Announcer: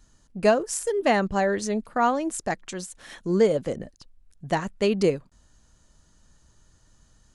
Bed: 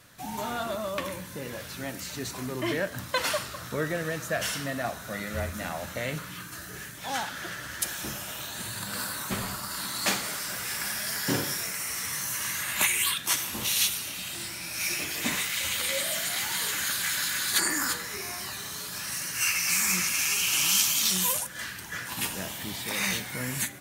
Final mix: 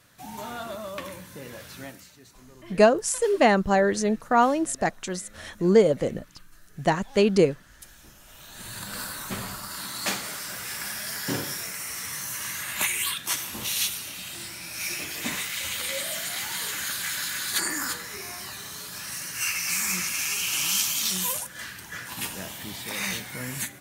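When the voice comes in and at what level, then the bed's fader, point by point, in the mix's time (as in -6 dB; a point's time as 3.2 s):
2.35 s, +2.5 dB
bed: 1.84 s -3.5 dB
2.17 s -17.5 dB
8.16 s -17.5 dB
8.75 s -1.5 dB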